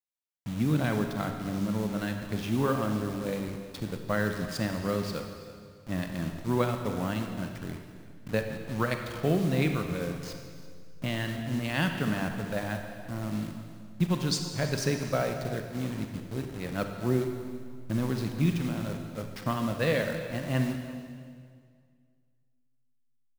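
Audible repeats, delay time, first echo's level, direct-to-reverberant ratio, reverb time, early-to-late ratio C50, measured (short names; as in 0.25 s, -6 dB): 2, 0.336 s, -18.0 dB, 4.5 dB, 2.0 s, 5.5 dB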